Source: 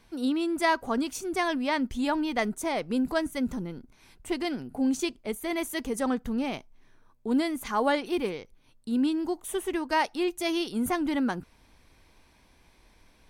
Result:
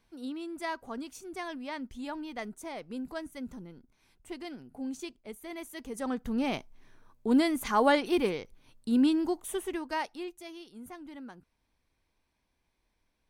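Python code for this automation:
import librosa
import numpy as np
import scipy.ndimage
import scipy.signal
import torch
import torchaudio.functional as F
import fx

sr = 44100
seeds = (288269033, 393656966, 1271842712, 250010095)

y = fx.gain(x, sr, db=fx.line((5.76, -11.0), (6.53, 1.5), (9.13, 1.5), (10.16, -9.5), (10.53, -18.0)))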